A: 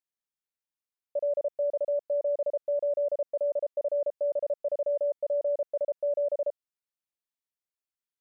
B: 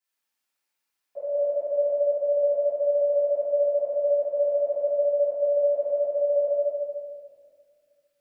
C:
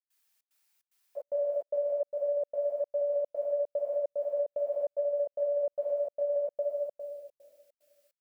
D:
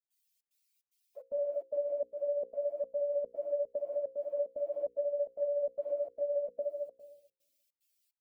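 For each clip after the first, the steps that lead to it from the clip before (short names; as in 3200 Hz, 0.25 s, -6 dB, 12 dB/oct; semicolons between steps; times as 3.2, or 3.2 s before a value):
HPF 770 Hz 6 dB/oct; limiter -35 dBFS, peak gain reduction 7 dB; reverb RT60 2.1 s, pre-delay 3 ms, DRR -17 dB; gain -4 dB
tilt +2.5 dB/oct; compressor, threshold -27 dBFS, peak gain reduction 6.5 dB; step gate ".xxx.xxx" 148 bpm -60 dB
per-bin expansion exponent 2; resonant low shelf 460 Hz +9.5 dB, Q 1.5; notches 60/120/180/240/300/360/420/480/540 Hz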